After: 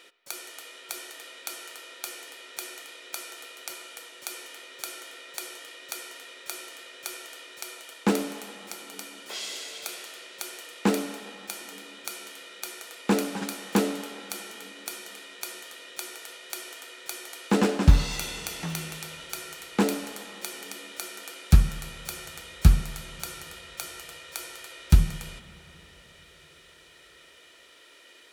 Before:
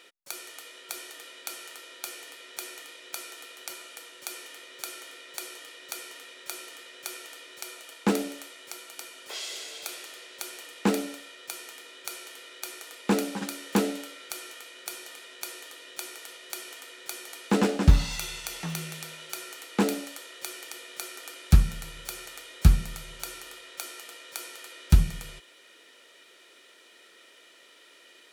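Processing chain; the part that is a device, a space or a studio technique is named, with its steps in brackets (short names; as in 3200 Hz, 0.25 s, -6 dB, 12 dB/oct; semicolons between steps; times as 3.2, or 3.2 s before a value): filtered reverb send (on a send: HPF 520 Hz 6 dB/oct + LPF 3600 Hz + reverb RT60 3.6 s, pre-delay 39 ms, DRR 10 dB); on the sum: gain +1 dB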